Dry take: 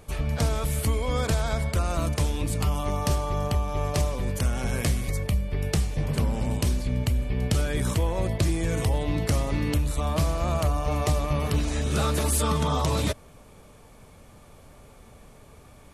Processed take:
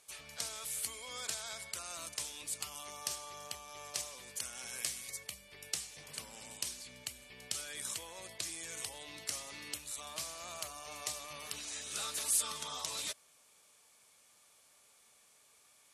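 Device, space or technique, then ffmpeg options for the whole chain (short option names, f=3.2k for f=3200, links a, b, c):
piezo pickup straight into a mixer: -af "lowpass=8.6k,aderivative"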